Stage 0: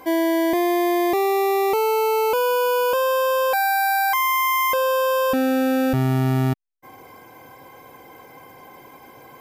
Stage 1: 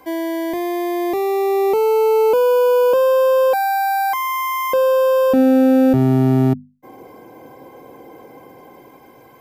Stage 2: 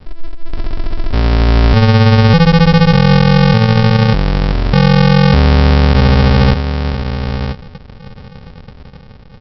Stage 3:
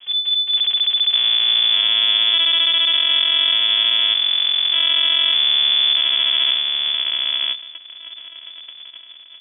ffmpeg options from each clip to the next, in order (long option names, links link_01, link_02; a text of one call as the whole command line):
ffmpeg -i in.wav -filter_complex "[0:a]lowshelf=frequency=190:gain=5,bandreject=frequency=50:width_type=h:width=6,bandreject=frequency=100:width_type=h:width=6,bandreject=frequency=150:width_type=h:width=6,bandreject=frequency=200:width_type=h:width=6,bandreject=frequency=250:width_type=h:width=6,acrossover=split=190|660|4800[link_01][link_02][link_03][link_04];[link_02]dynaudnorm=framelen=470:gausssize=7:maxgain=14.5dB[link_05];[link_01][link_05][link_03][link_04]amix=inputs=4:normalize=0,volume=-4dB" out.wav
ffmpeg -i in.wav -filter_complex "[0:a]asplit=2[link_01][link_02];[link_02]adelay=991.3,volume=-12dB,highshelf=frequency=4000:gain=-22.3[link_03];[link_01][link_03]amix=inputs=2:normalize=0,aresample=11025,acrusher=samples=33:mix=1:aa=0.000001,aresample=44100,alimiter=level_in=9.5dB:limit=-1dB:release=50:level=0:latency=1,volume=-1dB" out.wav
ffmpeg -i in.wav -af "aeval=exprs='(tanh(6.31*val(0)+0.75)-tanh(0.75))/6.31':channel_layout=same,lowpass=frequency=3000:width_type=q:width=0.5098,lowpass=frequency=3000:width_type=q:width=0.6013,lowpass=frequency=3000:width_type=q:width=0.9,lowpass=frequency=3000:width_type=q:width=2.563,afreqshift=-3500" out.wav